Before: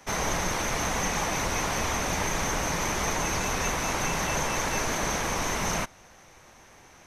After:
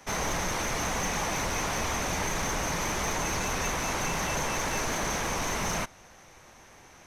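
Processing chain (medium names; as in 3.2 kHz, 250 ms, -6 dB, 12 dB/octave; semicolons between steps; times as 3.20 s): saturation -23 dBFS, distortion -16 dB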